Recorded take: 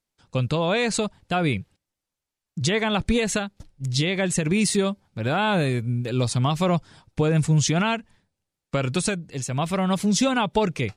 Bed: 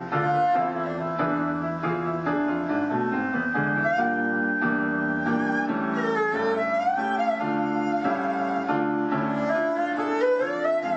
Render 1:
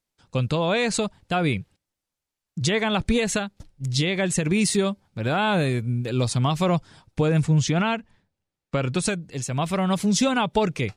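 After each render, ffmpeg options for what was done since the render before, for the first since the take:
ffmpeg -i in.wav -filter_complex "[0:a]asettb=1/sr,asplit=3[link_01][link_02][link_03];[link_01]atrim=end=7.424[link_04];[link_02]atrim=start=7.42:end=9.02,asetpts=PTS-STARTPTS,afade=type=in:duration=0.004:curve=qsin,afade=type=out:start_time=1.596:duration=0.004:curve=qsin,lowpass=frequency=3800:poles=1[link_05];[link_03]atrim=start=9.016[link_06];[link_04][link_05]acrossfade=duration=0.004:curve1=hsin:curve2=qsin[link_07];[link_07][link_06]acrossfade=duration=0.004:curve1=qsin:curve2=hsin" out.wav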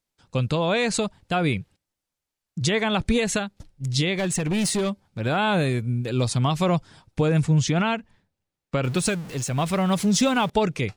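ffmpeg -i in.wav -filter_complex "[0:a]asettb=1/sr,asplit=3[link_01][link_02][link_03];[link_01]atrim=end=4.174[link_04];[link_02]atrim=start=4.17:end=5.2,asetpts=PTS-STARTPTS,afade=type=in:duration=0.004:curve=qsin,afade=type=out:start_time=1.026:duration=0.004:curve=qsin,asoftclip=type=hard:threshold=-20dB[link_05];[link_03]atrim=start=5.196[link_06];[link_04][link_05]acrossfade=duration=0.004:curve1=hsin:curve2=qsin[link_07];[link_07][link_06]acrossfade=duration=0.004:curve1=qsin:curve2=hsin,asettb=1/sr,asplit=3[link_08][link_09][link_10];[link_08]atrim=end=8.844[link_11];[link_09]atrim=start=8.84:end=10.5,asetpts=PTS-STARTPTS,afade=type=in:duration=0.004:curve=qsin,afade=type=out:start_time=1.656:duration=0.004:curve=qsin,aeval=exprs='val(0)+0.5*0.0178*sgn(val(0))':channel_layout=same[link_12];[link_10]atrim=start=10.496[link_13];[link_11][link_12]acrossfade=duration=0.004:curve1=hsin:curve2=qsin[link_14];[link_14][link_13]acrossfade=duration=0.004:curve1=qsin:curve2=hsin" out.wav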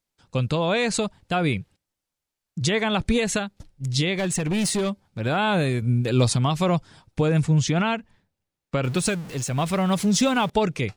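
ffmpeg -i in.wav -filter_complex "[0:a]asplit=3[link_01][link_02][link_03];[link_01]atrim=end=5.822[link_04];[link_02]atrim=start=5.818:end=6.362,asetpts=PTS-STARTPTS,volume=4dB[link_05];[link_03]atrim=start=6.358[link_06];[link_04][link_05]acrossfade=duration=0.004:curve1=hsin:curve2=hsin[link_07];[link_07][link_06]acrossfade=duration=0.004:curve1=hsin:curve2=hsin" out.wav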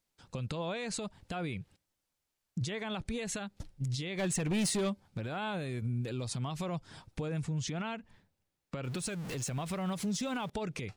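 ffmpeg -i in.wav -af "acompressor=threshold=-26dB:ratio=6,alimiter=level_in=3dB:limit=-24dB:level=0:latency=1:release=238,volume=-3dB" out.wav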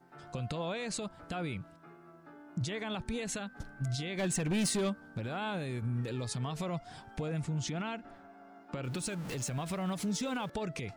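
ffmpeg -i in.wav -i bed.wav -filter_complex "[1:a]volume=-28.5dB[link_01];[0:a][link_01]amix=inputs=2:normalize=0" out.wav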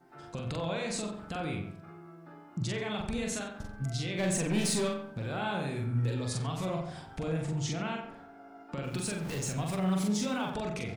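ffmpeg -i in.wav -filter_complex "[0:a]asplit=2[link_01][link_02];[link_02]adelay=43,volume=-2.5dB[link_03];[link_01][link_03]amix=inputs=2:normalize=0,asplit=2[link_04][link_05];[link_05]adelay=91,lowpass=frequency=1900:poles=1,volume=-6dB,asplit=2[link_06][link_07];[link_07]adelay=91,lowpass=frequency=1900:poles=1,volume=0.41,asplit=2[link_08][link_09];[link_09]adelay=91,lowpass=frequency=1900:poles=1,volume=0.41,asplit=2[link_10][link_11];[link_11]adelay=91,lowpass=frequency=1900:poles=1,volume=0.41,asplit=2[link_12][link_13];[link_13]adelay=91,lowpass=frequency=1900:poles=1,volume=0.41[link_14];[link_06][link_08][link_10][link_12][link_14]amix=inputs=5:normalize=0[link_15];[link_04][link_15]amix=inputs=2:normalize=0" out.wav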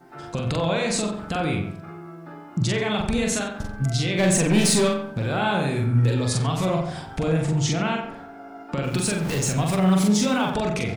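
ffmpeg -i in.wav -af "volume=10.5dB" out.wav

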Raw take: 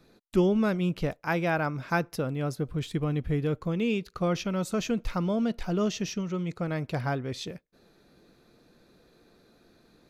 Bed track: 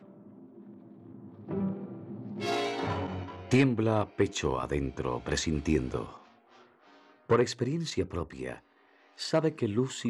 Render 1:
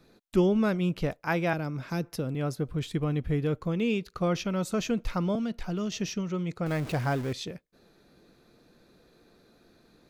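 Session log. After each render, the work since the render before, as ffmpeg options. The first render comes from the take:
ffmpeg -i in.wav -filter_complex "[0:a]asettb=1/sr,asplit=3[link_01][link_02][link_03];[link_01]atrim=end=1.534[link_04];[link_02]atrim=start=1.53:end=2.35,asetpts=PTS-STARTPTS,afade=type=in:duration=0.004:curve=qsin,afade=type=out:start_time=0.816:duration=0.004:curve=qsin,acrossover=split=470|3000[link_05][link_06][link_07];[link_06]acompressor=threshold=-43dB:ratio=3:attack=3.2:release=140:knee=2.83:detection=peak[link_08];[link_05][link_08][link_07]amix=inputs=3:normalize=0[link_09];[link_03]atrim=start=2.346[link_10];[link_04][link_09]acrossfade=duration=0.004:curve1=hsin:curve2=qsin[link_11];[link_11][link_10]acrossfade=duration=0.004:curve1=qsin:curve2=hsin,asettb=1/sr,asplit=3[link_12][link_13][link_14];[link_12]atrim=end=5.354[link_15];[link_13]atrim=start=5.35:end=5.92,asetpts=PTS-STARTPTS,afade=type=in:duration=0.004:curve=qsin,afade=type=out:start_time=0.566:duration=0.004:curve=qsin,acrossover=split=320|880|1900[link_16][link_17][link_18][link_19];[link_16]acompressor=threshold=-30dB:ratio=3[link_20];[link_17]acompressor=threshold=-44dB:ratio=3[link_21];[link_18]acompressor=threshold=-48dB:ratio=3[link_22];[link_19]acompressor=threshold=-49dB:ratio=3[link_23];[link_20][link_21][link_22][link_23]amix=inputs=4:normalize=0[link_24];[link_14]atrim=start=5.916[link_25];[link_15][link_24]acrossfade=duration=0.004:curve1=hsin:curve2=qsin[link_26];[link_26][link_25]acrossfade=duration=0.004:curve1=qsin:curve2=hsin,asettb=1/sr,asplit=3[link_27][link_28][link_29];[link_27]atrim=end=6.664[link_30];[link_28]atrim=start=6.66:end=7.33,asetpts=PTS-STARTPTS,afade=type=in:duration=0.004:curve=qsin,afade=type=out:start_time=0.666:duration=0.004:curve=qsin,aeval=exprs='val(0)+0.5*0.0168*sgn(val(0))':channel_layout=same[link_31];[link_29]atrim=start=7.326[link_32];[link_30][link_31]acrossfade=duration=0.004:curve1=hsin:curve2=qsin[link_33];[link_33][link_32]acrossfade=duration=0.004:curve1=qsin:curve2=hsin" out.wav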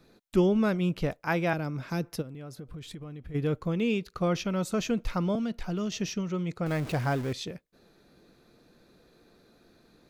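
ffmpeg -i in.wav -filter_complex "[0:a]asplit=3[link_01][link_02][link_03];[link_01]afade=type=out:start_time=2.21:duration=0.02[link_04];[link_02]acompressor=threshold=-38dB:ratio=8:attack=3.2:release=140:knee=1:detection=peak,afade=type=in:start_time=2.21:duration=0.02,afade=type=out:start_time=3.34:duration=0.02[link_05];[link_03]afade=type=in:start_time=3.34:duration=0.02[link_06];[link_04][link_05][link_06]amix=inputs=3:normalize=0" out.wav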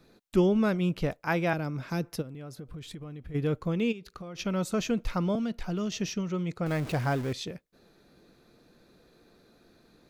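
ffmpeg -i in.wav -filter_complex "[0:a]asplit=3[link_01][link_02][link_03];[link_01]afade=type=out:start_time=3.91:duration=0.02[link_04];[link_02]acompressor=threshold=-38dB:ratio=10:attack=3.2:release=140:knee=1:detection=peak,afade=type=in:start_time=3.91:duration=0.02,afade=type=out:start_time=4.38:duration=0.02[link_05];[link_03]afade=type=in:start_time=4.38:duration=0.02[link_06];[link_04][link_05][link_06]amix=inputs=3:normalize=0" out.wav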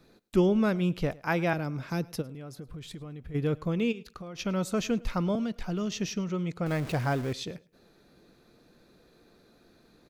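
ffmpeg -i in.wav -af "aecho=1:1:106|212:0.0708|0.0127" out.wav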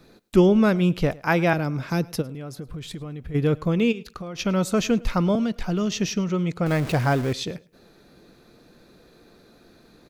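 ffmpeg -i in.wav -af "volume=7dB" out.wav

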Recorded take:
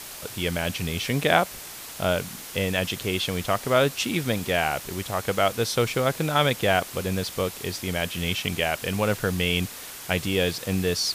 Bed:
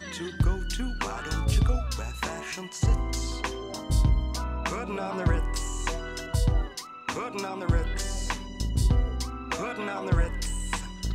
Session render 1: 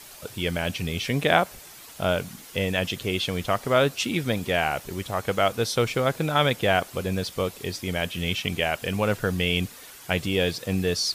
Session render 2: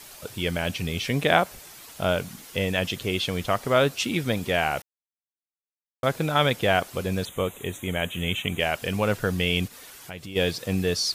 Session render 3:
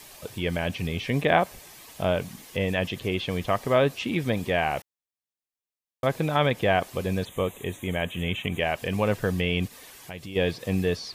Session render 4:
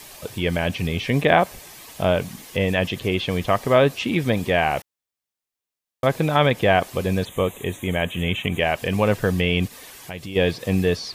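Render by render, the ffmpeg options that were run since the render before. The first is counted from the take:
ffmpeg -i in.wav -af "afftdn=noise_reduction=8:noise_floor=-40" out.wav
ffmpeg -i in.wav -filter_complex "[0:a]asettb=1/sr,asplit=3[link_01][link_02][link_03];[link_01]atrim=end=7.254[link_04];[link_02]atrim=start=7.25:end=8.6,asetpts=PTS-STARTPTS,afade=type=in:duration=0.004:curve=qsin,afade=type=out:start_time=1.346:duration=0.004:curve=qsin,asuperstop=centerf=4900:order=8:qfactor=1.9[link_05];[link_03]atrim=start=8.596[link_06];[link_04][link_05]acrossfade=duration=0.004:curve1=hsin:curve2=qsin[link_07];[link_07][link_06]acrossfade=duration=0.004:curve1=qsin:curve2=hsin,asplit=3[link_08][link_09][link_10];[link_08]afade=type=out:start_time=9.67:duration=0.02[link_11];[link_09]acompressor=threshold=-40dB:ratio=2.5:attack=3.2:release=140:knee=1:detection=peak,afade=type=in:start_time=9.67:duration=0.02,afade=type=out:start_time=10.35:duration=0.02[link_12];[link_10]afade=type=in:start_time=10.35:duration=0.02[link_13];[link_11][link_12][link_13]amix=inputs=3:normalize=0,asplit=3[link_14][link_15][link_16];[link_14]atrim=end=4.82,asetpts=PTS-STARTPTS,afade=type=out:start_time=4.816:duration=0.004:curve=hsin[link_17];[link_15]atrim=start=4.82:end=6.03,asetpts=PTS-STARTPTS,volume=0[link_18];[link_16]atrim=start=6.03,asetpts=PTS-STARTPTS,afade=type=in:duration=0.004:curve=hsin[link_19];[link_17][link_18][link_19]concat=n=3:v=0:a=1" out.wav
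ffmpeg -i in.wav -filter_complex "[0:a]acrossover=split=3000[link_01][link_02];[link_02]acompressor=threshold=-44dB:ratio=4:attack=1:release=60[link_03];[link_01][link_03]amix=inputs=2:normalize=0,bandreject=frequency=1400:width=6.8" out.wav
ffmpeg -i in.wav -af "volume=5dB,alimiter=limit=-3dB:level=0:latency=1" out.wav

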